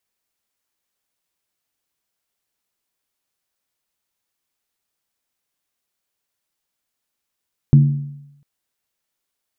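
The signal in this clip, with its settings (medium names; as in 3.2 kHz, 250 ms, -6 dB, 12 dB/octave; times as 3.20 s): skin hit length 0.70 s, lowest mode 143 Hz, decay 0.86 s, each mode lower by 10.5 dB, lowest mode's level -4.5 dB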